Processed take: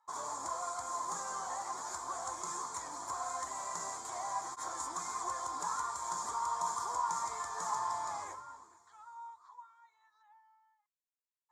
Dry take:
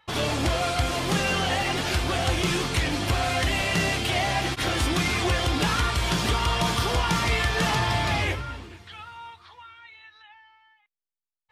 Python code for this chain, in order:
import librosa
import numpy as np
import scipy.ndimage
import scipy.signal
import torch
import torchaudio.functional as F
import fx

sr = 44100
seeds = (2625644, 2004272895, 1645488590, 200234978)

y = fx.double_bandpass(x, sr, hz=2700.0, octaves=2.8)
y = fx.dmg_noise_colour(y, sr, seeds[0], colour='pink', level_db=-77.0, at=(2.84, 3.29), fade=0.02)